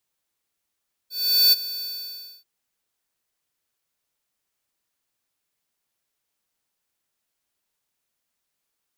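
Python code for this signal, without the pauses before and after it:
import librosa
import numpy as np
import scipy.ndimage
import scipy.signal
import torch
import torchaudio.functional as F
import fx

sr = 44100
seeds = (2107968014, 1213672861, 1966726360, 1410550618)

y = fx.adsr_tone(sr, wave='square', hz=4510.0, attack_ms=424.0, decay_ms=23.0, sustain_db=-16.5, held_s=0.72, release_ms=617.0, level_db=-14.5)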